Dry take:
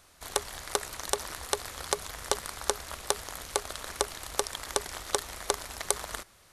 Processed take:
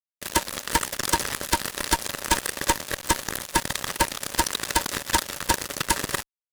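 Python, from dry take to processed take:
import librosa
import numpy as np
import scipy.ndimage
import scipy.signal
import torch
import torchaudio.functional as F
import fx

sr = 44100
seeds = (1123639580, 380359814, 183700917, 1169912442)

y = fx.band_swap(x, sr, width_hz=500)
y = fx.fuzz(y, sr, gain_db=30.0, gate_db=-39.0)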